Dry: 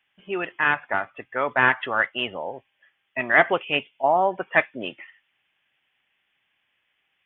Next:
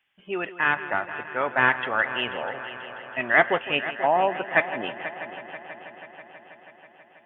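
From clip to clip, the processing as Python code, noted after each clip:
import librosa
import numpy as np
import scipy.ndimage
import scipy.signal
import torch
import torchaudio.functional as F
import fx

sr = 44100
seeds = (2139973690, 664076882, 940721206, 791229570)

y = fx.echo_heads(x, sr, ms=162, heads='first and third', feedback_pct=70, wet_db=-14.5)
y = y * 10.0 ** (-1.5 / 20.0)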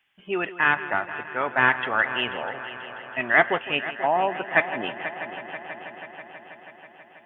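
y = fx.peak_eq(x, sr, hz=540.0, db=-3.5, octaves=0.31)
y = fx.rider(y, sr, range_db=4, speed_s=2.0)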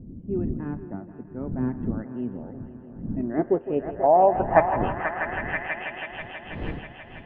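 y = fx.dmg_wind(x, sr, seeds[0], corner_hz=250.0, level_db=-40.0)
y = fx.filter_sweep_lowpass(y, sr, from_hz=240.0, to_hz=3300.0, start_s=3.08, end_s=6.16, q=2.2)
y = y * 10.0 ** (2.5 / 20.0)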